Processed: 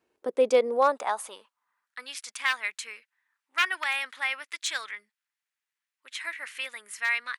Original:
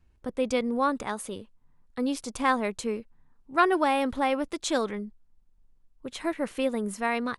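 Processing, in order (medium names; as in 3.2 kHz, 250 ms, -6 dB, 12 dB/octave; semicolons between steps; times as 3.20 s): one-sided wavefolder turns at -19 dBFS; high-pass sweep 420 Hz -> 1.9 kHz, 0.47–2.15 s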